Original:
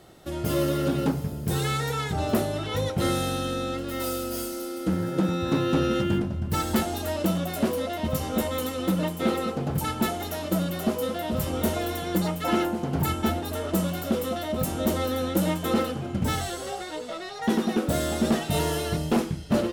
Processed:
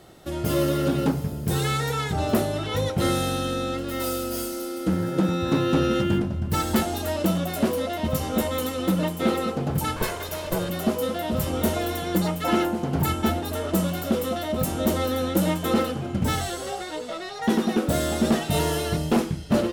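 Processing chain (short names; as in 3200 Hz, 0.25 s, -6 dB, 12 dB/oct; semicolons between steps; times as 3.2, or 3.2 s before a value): 9.96–10.7 minimum comb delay 1.9 ms; gain +2 dB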